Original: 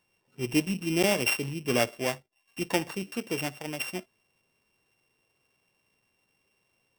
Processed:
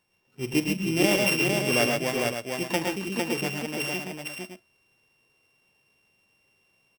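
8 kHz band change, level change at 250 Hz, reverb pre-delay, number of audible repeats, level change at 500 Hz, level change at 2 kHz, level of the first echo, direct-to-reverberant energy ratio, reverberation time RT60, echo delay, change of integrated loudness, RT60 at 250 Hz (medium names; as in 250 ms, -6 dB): +3.0 dB, +3.5 dB, no reverb, 4, +3.5 dB, +5.0 dB, -15.0 dB, no reverb, no reverb, 43 ms, +3.0 dB, no reverb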